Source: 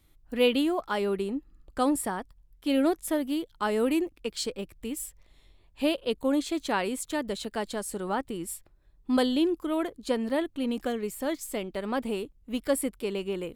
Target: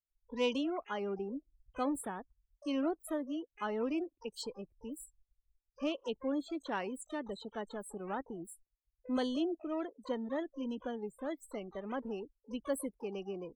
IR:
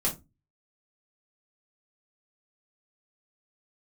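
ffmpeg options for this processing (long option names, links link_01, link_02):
-filter_complex "[0:a]afftdn=noise_reduction=34:noise_floor=-35,asplit=2[link_01][link_02];[link_02]asetrate=88200,aresample=44100,atempo=0.5,volume=-16dB[link_03];[link_01][link_03]amix=inputs=2:normalize=0,volume=-9dB"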